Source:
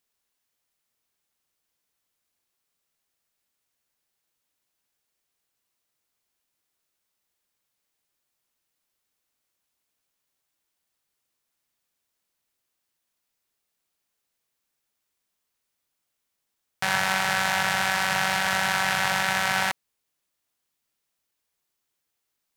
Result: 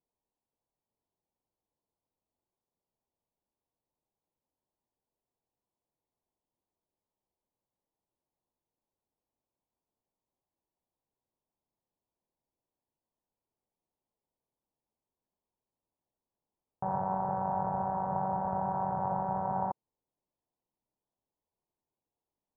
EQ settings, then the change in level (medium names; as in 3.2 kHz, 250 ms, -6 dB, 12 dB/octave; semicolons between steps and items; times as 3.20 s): elliptic low-pass 970 Hz, stop band 70 dB; distance through air 390 m; 0.0 dB